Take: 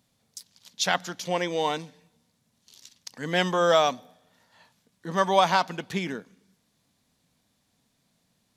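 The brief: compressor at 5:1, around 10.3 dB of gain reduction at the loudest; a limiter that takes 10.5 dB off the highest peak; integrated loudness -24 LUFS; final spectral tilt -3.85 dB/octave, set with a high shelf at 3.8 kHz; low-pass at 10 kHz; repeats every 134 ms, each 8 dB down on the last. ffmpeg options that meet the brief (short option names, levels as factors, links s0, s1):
-af "lowpass=10000,highshelf=f=3800:g=3.5,acompressor=threshold=0.0501:ratio=5,alimiter=limit=0.0631:level=0:latency=1,aecho=1:1:134|268|402|536|670:0.398|0.159|0.0637|0.0255|0.0102,volume=3.98"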